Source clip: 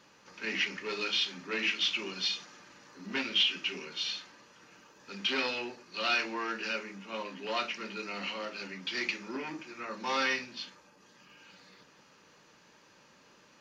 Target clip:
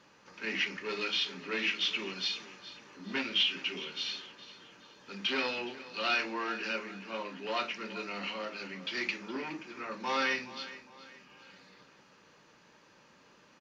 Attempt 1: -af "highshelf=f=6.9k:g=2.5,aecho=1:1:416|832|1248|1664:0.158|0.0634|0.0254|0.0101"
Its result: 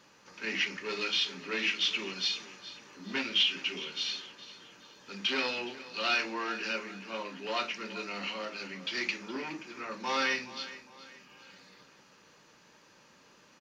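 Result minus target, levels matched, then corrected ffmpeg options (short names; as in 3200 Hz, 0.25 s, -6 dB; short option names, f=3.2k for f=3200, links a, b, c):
8000 Hz band +3.5 dB
-af "highshelf=f=6.9k:g=-9,aecho=1:1:416|832|1248|1664:0.158|0.0634|0.0254|0.0101"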